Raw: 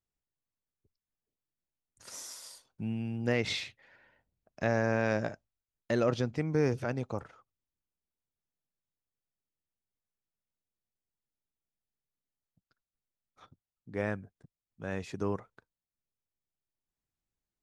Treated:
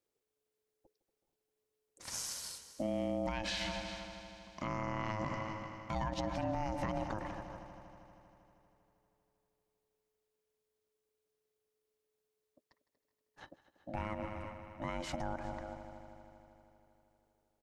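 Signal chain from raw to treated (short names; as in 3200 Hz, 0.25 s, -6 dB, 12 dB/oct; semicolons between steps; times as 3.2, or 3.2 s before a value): echo 0.374 s -21 dB; ring modulator 430 Hz; bell 83 Hz +3.5 dB; multi-head echo 79 ms, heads second and third, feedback 65%, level -18 dB; compressor, threshold -33 dBFS, peak gain reduction 9 dB; limiter -32.5 dBFS, peak gain reduction 10.5 dB; gain +6.5 dB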